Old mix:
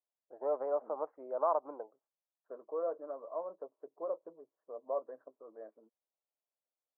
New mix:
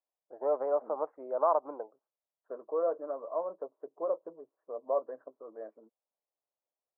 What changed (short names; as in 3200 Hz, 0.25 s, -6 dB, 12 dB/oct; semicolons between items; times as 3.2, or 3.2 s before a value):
first voice +4.0 dB; second voice +5.5 dB